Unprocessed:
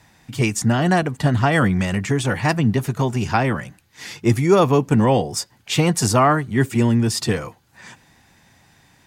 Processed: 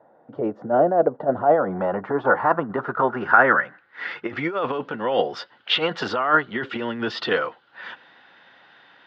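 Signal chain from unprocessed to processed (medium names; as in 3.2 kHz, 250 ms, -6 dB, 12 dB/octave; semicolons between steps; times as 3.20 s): compressor with a negative ratio -18 dBFS, ratio -0.5; low-pass sweep 610 Hz -> 3 kHz, 1.15–4.81 s; cabinet simulation 380–4400 Hz, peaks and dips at 520 Hz +5 dB, 1.4 kHz +9 dB, 2.4 kHz -10 dB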